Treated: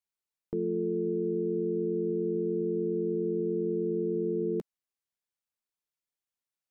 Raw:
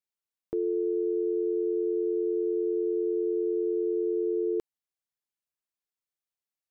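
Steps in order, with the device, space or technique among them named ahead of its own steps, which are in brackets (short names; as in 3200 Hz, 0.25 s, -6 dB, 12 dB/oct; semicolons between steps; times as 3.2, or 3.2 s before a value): octave pedal (harmoniser -12 st -6 dB); gain -3 dB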